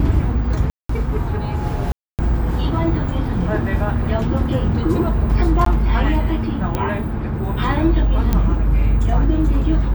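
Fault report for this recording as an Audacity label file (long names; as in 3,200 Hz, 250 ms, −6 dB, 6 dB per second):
0.700000	0.890000	drop-out 194 ms
1.920000	2.190000	drop-out 268 ms
5.650000	5.660000	drop-out 13 ms
6.750000	6.750000	click −7 dBFS
8.330000	8.330000	click −5 dBFS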